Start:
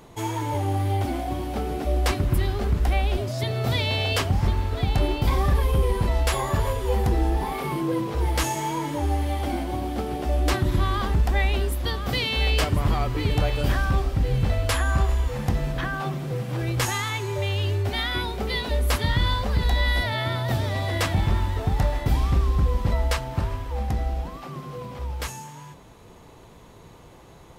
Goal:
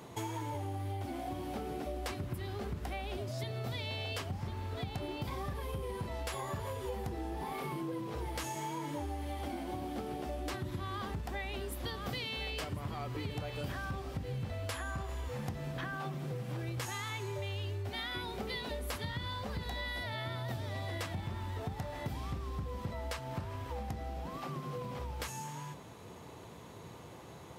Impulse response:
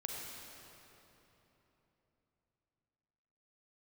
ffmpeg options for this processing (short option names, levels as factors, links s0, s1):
-af "highpass=f=76:w=0.5412,highpass=f=76:w=1.3066,acompressor=threshold=0.0178:ratio=6,volume=0.841"